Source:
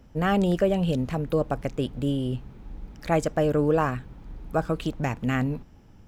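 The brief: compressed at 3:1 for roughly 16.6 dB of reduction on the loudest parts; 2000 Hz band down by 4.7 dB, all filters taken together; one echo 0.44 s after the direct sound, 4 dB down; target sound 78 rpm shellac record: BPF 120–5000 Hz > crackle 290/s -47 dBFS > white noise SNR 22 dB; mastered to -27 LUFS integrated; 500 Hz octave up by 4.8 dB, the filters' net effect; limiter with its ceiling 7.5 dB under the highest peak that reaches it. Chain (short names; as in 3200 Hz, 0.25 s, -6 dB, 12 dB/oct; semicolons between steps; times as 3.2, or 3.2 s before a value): bell 500 Hz +6 dB; bell 2000 Hz -6.5 dB; compressor 3:1, threshold -38 dBFS; limiter -31.5 dBFS; BPF 120–5000 Hz; echo 0.44 s -4 dB; crackle 290/s -47 dBFS; white noise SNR 22 dB; gain +13.5 dB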